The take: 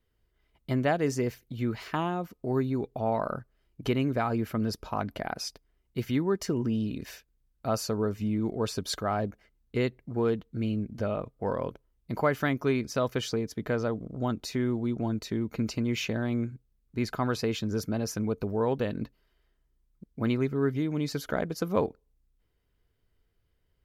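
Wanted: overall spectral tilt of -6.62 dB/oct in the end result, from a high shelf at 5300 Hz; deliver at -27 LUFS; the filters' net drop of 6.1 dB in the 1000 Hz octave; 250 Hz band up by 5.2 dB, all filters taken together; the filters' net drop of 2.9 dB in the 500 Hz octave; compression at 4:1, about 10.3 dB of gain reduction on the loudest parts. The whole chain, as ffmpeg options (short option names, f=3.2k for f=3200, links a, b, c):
-af "equalizer=f=250:t=o:g=7.5,equalizer=f=500:t=o:g=-5,equalizer=f=1k:t=o:g=-7,highshelf=f=5.3k:g=-4,acompressor=threshold=-32dB:ratio=4,volume=9dB"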